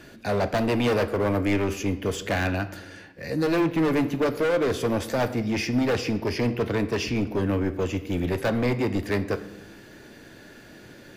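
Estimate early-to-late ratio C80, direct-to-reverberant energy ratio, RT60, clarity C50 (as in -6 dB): 16.5 dB, 10.0 dB, 0.95 s, 14.5 dB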